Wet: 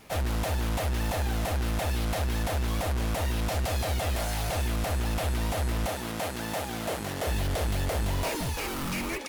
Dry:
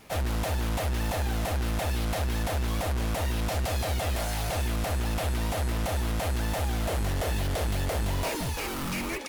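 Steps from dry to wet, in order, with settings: 5.88–7.27 s: high-pass 150 Hz 12 dB/octave

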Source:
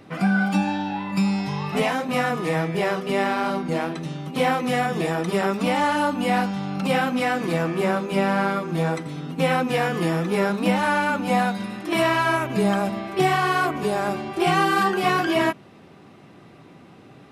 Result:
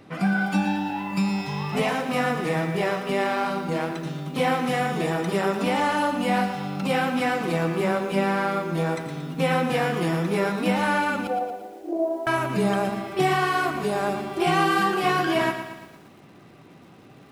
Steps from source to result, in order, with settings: 11.27–12.27 s: Chebyshev band-pass 310–730 Hz, order 3; bit-crushed delay 115 ms, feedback 55%, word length 8-bit, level -9 dB; trim -2 dB

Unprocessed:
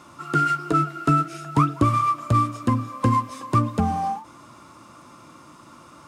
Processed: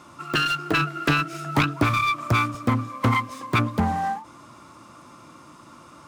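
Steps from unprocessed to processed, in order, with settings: self-modulated delay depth 0.44 ms; 0.73–2.55 s: three bands compressed up and down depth 40%

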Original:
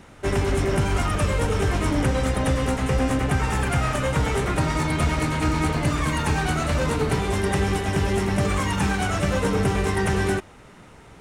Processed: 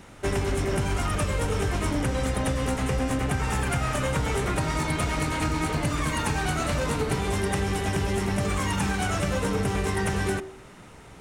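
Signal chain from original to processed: treble shelf 6.4 kHz +4 dB; de-hum 76.45 Hz, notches 28; compression, threshold -22 dBFS, peak gain reduction 6 dB

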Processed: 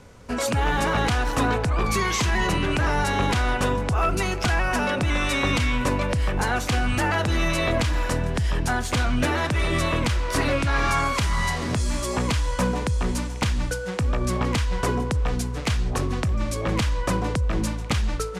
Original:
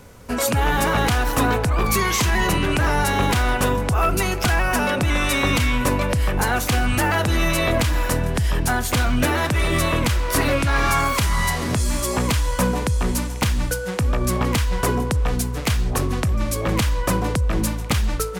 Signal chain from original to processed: low-pass 7.8 kHz 12 dB/octave; trim -3 dB

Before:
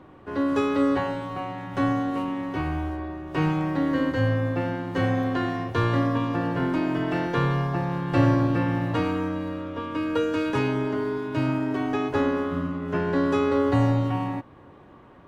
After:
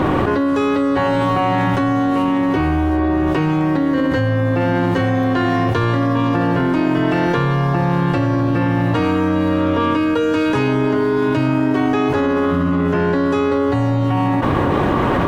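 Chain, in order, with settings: 2.38–4.11 s: dynamic bell 360 Hz, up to +3 dB, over -36 dBFS, Q 1.4; level flattener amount 100%

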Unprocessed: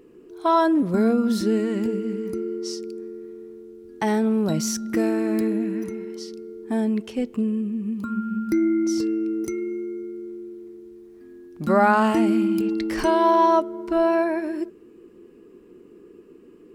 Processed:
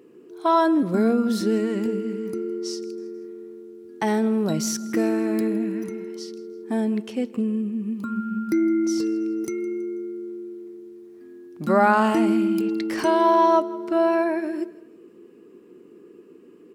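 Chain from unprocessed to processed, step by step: high-pass 140 Hz 12 dB/octave; feedback delay 162 ms, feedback 41%, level -20 dB

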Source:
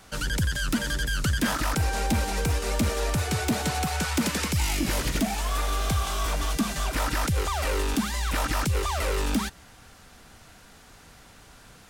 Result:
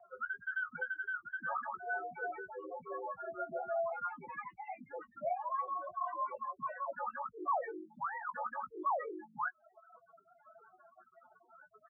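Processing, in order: reverb removal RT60 0.74 s; reverse; compression 6:1, threshold -33 dBFS, peak gain reduction 12 dB; reverse; loudest bins only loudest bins 8; doubling 16 ms -9 dB; mistuned SSB -73 Hz 560–2000 Hz; trim +6 dB

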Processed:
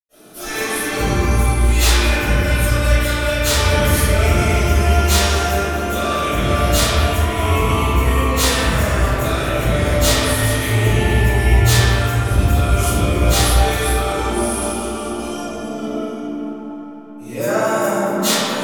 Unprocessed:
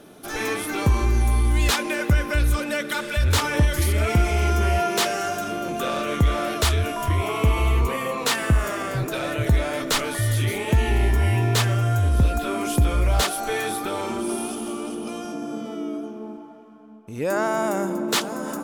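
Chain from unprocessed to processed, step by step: treble shelf 4.2 kHz +11 dB; reverberation RT60 3.7 s, pre-delay 90 ms, DRR -60 dB; trim +7.5 dB

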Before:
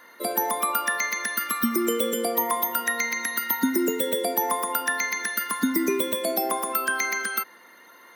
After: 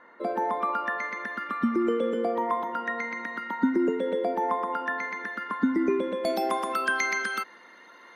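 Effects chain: low-pass 1.5 kHz 12 dB/octave, from 6.25 s 4.8 kHz

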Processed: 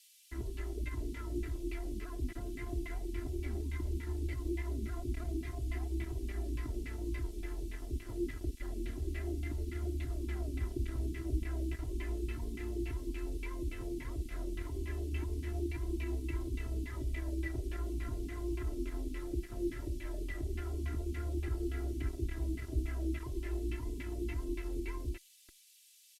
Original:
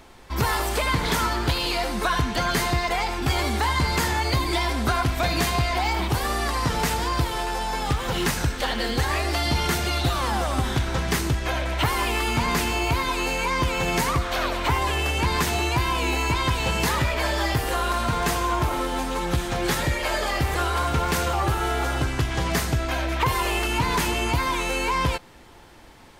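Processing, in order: on a send: delay 426 ms -11 dB; on the sum: bit crusher 4-bit; peak limiter -22 dBFS, peak gain reduction 11 dB; LFO low-pass saw down 3.5 Hz 210–2600 Hz; amplifier tone stack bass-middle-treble 10-0-1; small resonant body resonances 340/2000 Hz, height 9 dB, ringing for 25 ms; band noise 2.5–13 kHz -66 dBFS; comb 3 ms, depth 80%; trim +1 dB

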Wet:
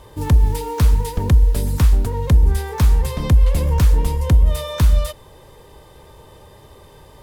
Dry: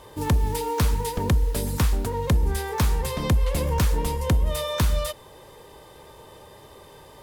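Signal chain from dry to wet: bass shelf 130 Hz +11 dB

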